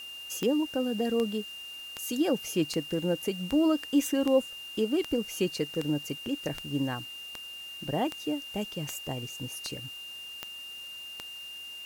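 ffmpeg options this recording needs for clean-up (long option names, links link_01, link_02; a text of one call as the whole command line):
ffmpeg -i in.wav -af "adeclick=threshold=4,bandreject=frequency=2800:width=30,afwtdn=0.0022" out.wav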